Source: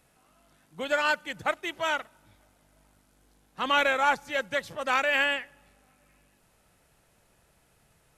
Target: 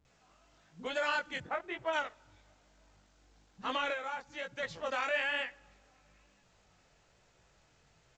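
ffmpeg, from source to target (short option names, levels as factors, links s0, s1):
-filter_complex "[0:a]asplit=3[s0][s1][s2];[s0]afade=t=out:st=1.36:d=0.02[s3];[s1]lowpass=2000,afade=t=in:st=1.36:d=0.02,afade=t=out:st=1.87:d=0.02[s4];[s2]afade=t=in:st=1.87:d=0.02[s5];[s3][s4][s5]amix=inputs=3:normalize=0,asettb=1/sr,asplit=3[s6][s7][s8];[s6]atrim=end=3.874[s9];[s7]atrim=start=3.87:end=4.58,asetpts=PTS-STARTPTS,afade=t=in:d=0.004:c=qsin,afade=t=out:st=0.706:d=0.004:c=qsin,acompressor=threshold=0.02:ratio=6[s10];[s8]atrim=start=4.576[s11];[s9][s10]acrossfade=d=0.004:c1=hsin:c2=qsin[s12];[s12][s11]acrossfade=d=0.004:c1=qsin:c2=hsin,alimiter=limit=0.1:level=0:latency=1:release=29,flanger=delay=15.5:depth=7.4:speed=1.1,acrossover=split=230[s13][s14];[s14]adelay=50[s15];[s13][s15]amix=inputs=2:normalize=0" -ar 16000 -c:a pcm_alaw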